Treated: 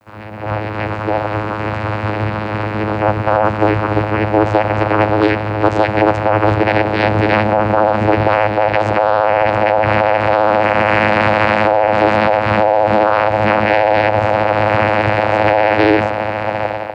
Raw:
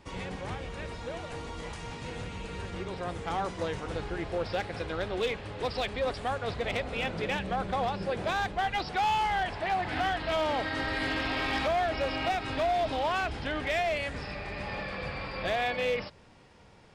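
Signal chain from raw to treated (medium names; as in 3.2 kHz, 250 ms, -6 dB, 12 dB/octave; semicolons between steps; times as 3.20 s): steep low-pass 5.4 kHz; echo that smears into a reverb 1504 ms, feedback 59%, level -8 dB; level rider gain up to 16 dB; high-order bell 1.2 kHz +11 dB 2.3 oct; vocoder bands 8, saw 106 Hz; vibrato 15 Hz 52 cents; bit crusher 10-bit; loudness maximiser -1 dB; trim -1 dB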